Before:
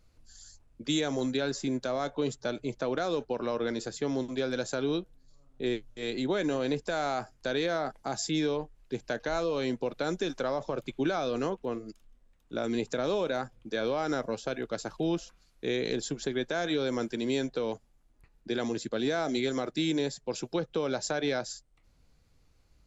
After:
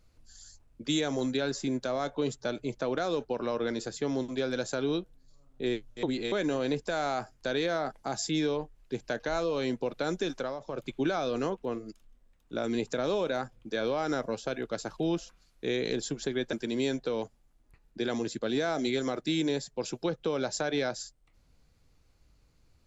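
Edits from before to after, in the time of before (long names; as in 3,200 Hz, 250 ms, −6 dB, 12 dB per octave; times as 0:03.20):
0:06.03–0:06.32: reverse
0:10.33–0:10.87: duck −9 dB, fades 0.27 s
0:16.53–0:17.03: remove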